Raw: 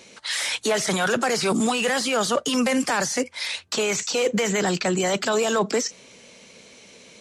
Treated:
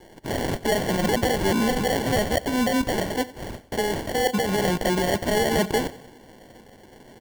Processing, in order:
0:02.26–0:04.51: parametric band 2,300 Hz −11.5 dB 0.91 octaves
decimation without filtering 35×
repeating echo 91 ms, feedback 56%, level −19.5 dB

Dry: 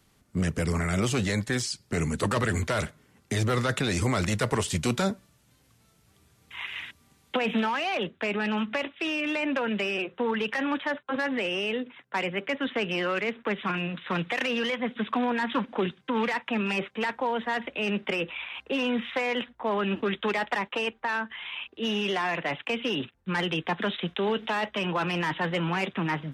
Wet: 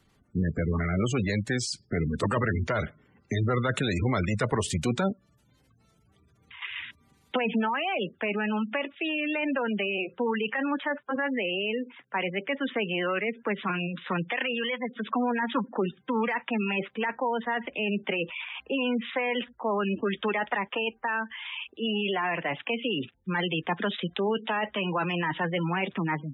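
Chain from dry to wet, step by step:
gate on every frequency bin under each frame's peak −20 dB strong
0:05.12–0:06.62: downward compressor 6 to 1, threshold −45 dBFS, peak gain reduction 11 dB
0:14.29–0:15.05: low-shelf EQ 350 Hz −5.5 dB

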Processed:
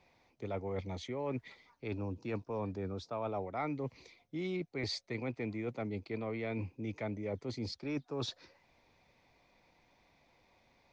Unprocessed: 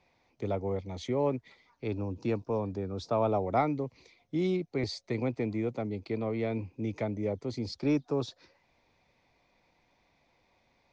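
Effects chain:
dynamic equaliser 2,000 Hz, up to +8 dB, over −50 dBFS, Q 0.72
reversed playback
downward compressor 6 to 1, threshold −36 dBFS, peak gain reduction 16 dB
reversed playback
level +1 dB

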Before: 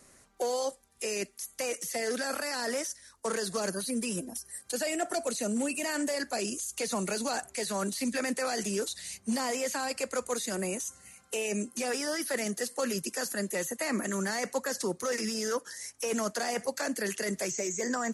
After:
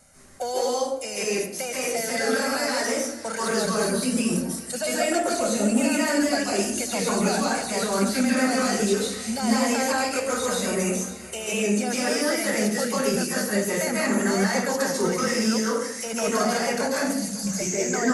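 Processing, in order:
0:16.97–0:17.47: Chebyshev band-stop filter 200–4,000 Hz, order 4
feedback echo with a high-pass in the loop 554 ms, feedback 51%, level −17 dB
convolution reverb RT60 0.70 s, pre-delay 136 ms, DRR −5.5 dB

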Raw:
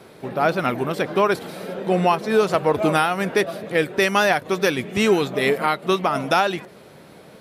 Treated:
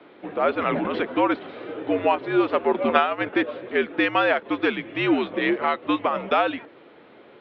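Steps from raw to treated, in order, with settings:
0:02.88–0:03.33: transient designer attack +11 dB, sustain −6 dB
single-sideband voice off tune −78 Hz 310–3,500 Hz
0:00.53–0:01.00: level that may fall only so fast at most 24 dB per second
level −2 dB

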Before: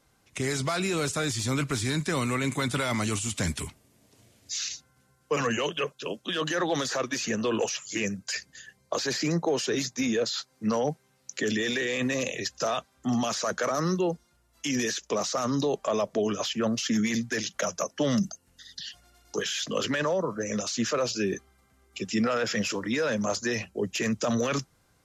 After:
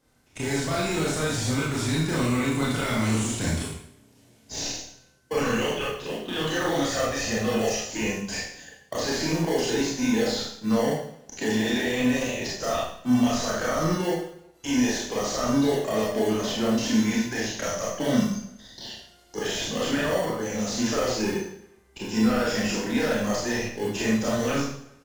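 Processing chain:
0:06.82–0:07.79: comb filter 1.6 ms, depth 60%
in parallel at −5.5 dB: decimation without filtering 35×
on the sum: far-end echo of a speakerphone 360 ms, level −28 dB
four-comb reverb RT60 0.62 s, combs from 25 ms, DRR −5.5 dB
level −6 dB

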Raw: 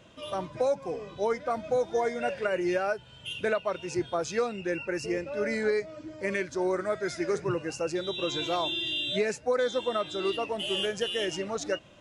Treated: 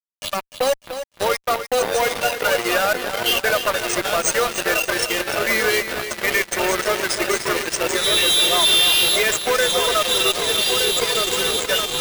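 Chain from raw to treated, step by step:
first-order pre-emphasis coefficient 0.97
time-frequency box erased 0:10.31–0:11.67, 520–7,500 Hz
high-shelf EQ 2,400 Hz −2.5 dB
spectral peaks only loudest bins 16
echo whose low-pass opens from repeat to repeat 610 ms, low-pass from 400 Hz, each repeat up 2 octaves, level −3 dB
fuzz pedal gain 50 dB, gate −50 dBFS
bad sample-rate conversion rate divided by 3×, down none, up hold
feedback echo at a low word length 299 ms, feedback 35%, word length 8 bits, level −10 dB

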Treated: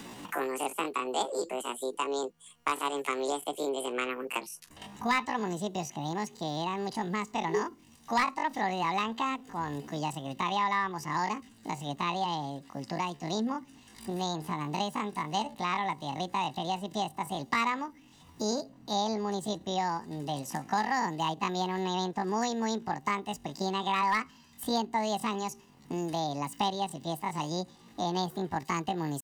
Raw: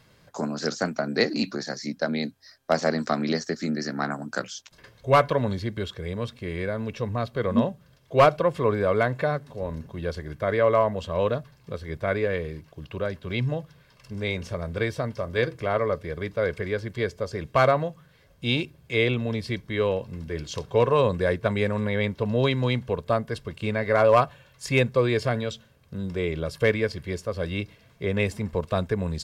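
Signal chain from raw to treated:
pitch shifter +10 semitones
multiband upward and downward compressor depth 70%
level −6.5 dB

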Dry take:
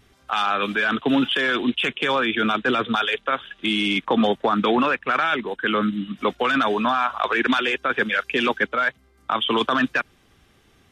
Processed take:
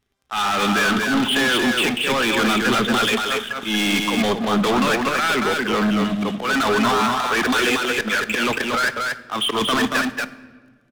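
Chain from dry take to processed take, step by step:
volume swells 167 ms
leveller curve on the samples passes 5
single-tap delay 232 ms −3.5 dB
on a send at −13 dB: convolution reverb RT60 1.4 s, pre-delay 5 ms
on the sum: level −8 dB

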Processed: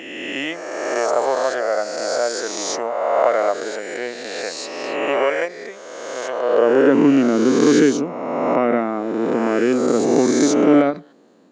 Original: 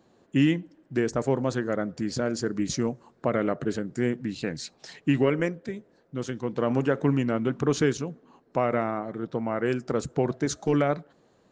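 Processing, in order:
peak hold with a rise ahead of every peak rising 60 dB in 1.97 s
high-pass filter sweep 650 Hz → 260 Hz, 0:06.38–0:06.97
every ending faded ahead of time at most 270 dB per second
level +3 dB

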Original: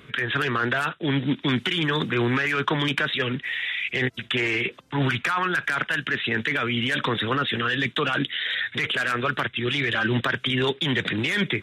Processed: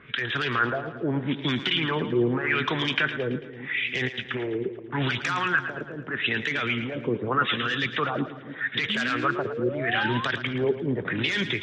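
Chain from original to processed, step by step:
auto-filter low-pass sine 0.81 Hz 400–6,200 Hz
echo with a time of its own for lows and highs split 340 Hz, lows 291 ms, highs 111 ms, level −11 dB
sound drawn into the spectrogram rise, 0:08.89–0:10.25, 200–1,100 Hz −29 dBFS
level −4 dB

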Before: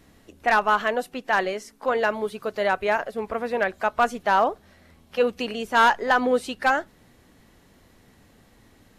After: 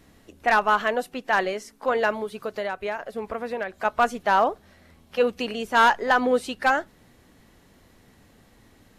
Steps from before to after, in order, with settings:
0:02.12–0:03.85: downward compressor 6 to 1, threshold −26 dBFS, peak gain reduction 9 dB

